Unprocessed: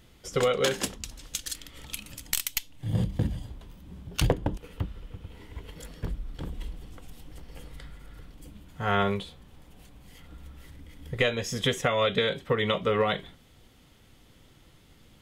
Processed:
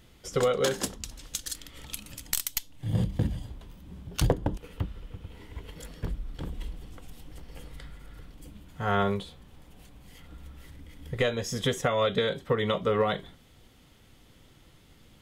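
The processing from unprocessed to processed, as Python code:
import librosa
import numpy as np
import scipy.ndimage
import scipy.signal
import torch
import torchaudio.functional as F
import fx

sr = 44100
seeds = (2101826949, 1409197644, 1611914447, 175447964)

y = fx.dynamic_eq(x, sr, hz=2500.0, q=1.6, threshold_db=-46.0, ratio=4.0, max_db=-7)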